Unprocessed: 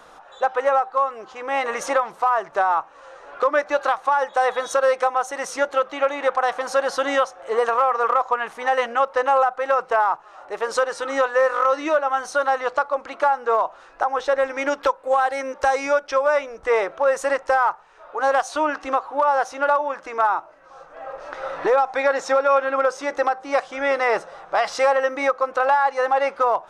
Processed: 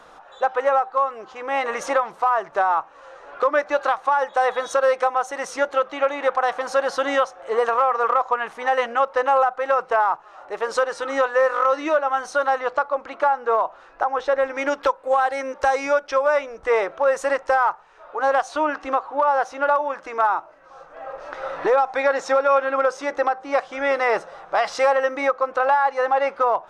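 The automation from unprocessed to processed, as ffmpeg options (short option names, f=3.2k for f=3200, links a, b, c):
-af "asetnsamples=n=441:p=0,asendcmd='12.59 lowpass f 3300;14.55 lowpass f 7300;18.17 lowpass f 3900;19.76 lowpass f 7500;23.1 lowpass f 3900;23.71 lowpass f 7500;25.21 lowpass f 4100',lowpass=f=6.2k:p=1"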